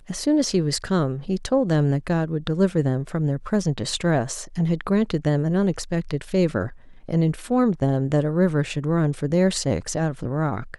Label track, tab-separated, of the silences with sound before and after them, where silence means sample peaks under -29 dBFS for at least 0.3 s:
6.680000	7.090000	silence